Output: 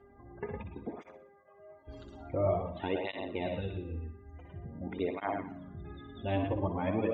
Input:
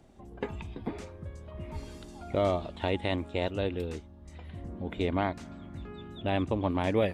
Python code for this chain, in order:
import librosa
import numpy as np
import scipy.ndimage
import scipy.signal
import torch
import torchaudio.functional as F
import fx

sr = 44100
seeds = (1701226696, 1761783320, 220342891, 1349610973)

y = x + 10.0 ** (-5.0 / 20.0) * np.pad(x, (int(109 * sr / 1000.0), 0))[:len(x)]
y = fx.spec_gate(y, sr, threshold_db=-25, keep='strong')
y = fx.vowel_filter(y, sr, vowel='a', at=(1.1, 1.87), fade=0.02)
y = fx.peak_eq(y, sr, hz=640.0, db=-12.5, octaves=1.2, at=(3.54, 4.36))
y = fx.echo_feedback(y, sr, ms=61, feedback_pct=42, wet_db=-8)
y = fx.dmg_buzz(y, sr, base_hz=400.0, harmonics=5, level_db=-57.0, tilt_db=-6, odd_only=False)
y = fx.high_shelf(y, sr, hz=6100.0, db=-7.0)
y = fx.flanger_cancel(y, sr, hz=0.48, depth_ms=6.5)
y = F.gain(torch.from_numpy(y), -2.0).numpy()